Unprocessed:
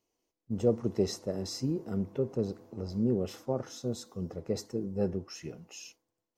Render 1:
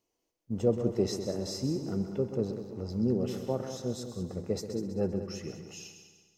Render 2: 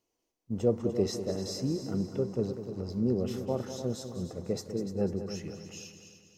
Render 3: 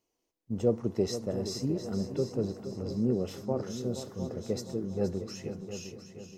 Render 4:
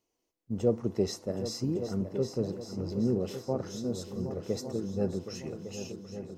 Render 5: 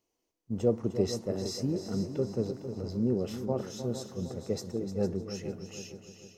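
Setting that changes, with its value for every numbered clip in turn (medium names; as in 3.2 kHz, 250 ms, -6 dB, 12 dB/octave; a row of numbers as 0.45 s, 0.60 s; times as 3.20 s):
multi-head delay, time: 65 ms, 99 ms, 236 ms, 385 ms, 152 ms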